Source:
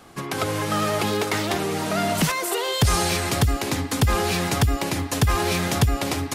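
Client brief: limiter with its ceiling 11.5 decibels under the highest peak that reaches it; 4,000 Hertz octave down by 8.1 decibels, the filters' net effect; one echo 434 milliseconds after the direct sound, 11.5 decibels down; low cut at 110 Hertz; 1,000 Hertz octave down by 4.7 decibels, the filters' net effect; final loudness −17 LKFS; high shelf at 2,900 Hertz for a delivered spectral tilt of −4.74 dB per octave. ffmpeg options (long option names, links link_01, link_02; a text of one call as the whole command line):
ffmpeg -i in.wav -af "highpass=110,equalizer=frequency=1000:width_type=o:gain=-5.5,highshelf=frequency=2900:gain=-3,equalizer=frequency=4000:width_type=o:gain=-8,alimiter=limit=-20dB:level=0:latency=1,aecho=1:1:434:0.266,volume=12dB" out.wav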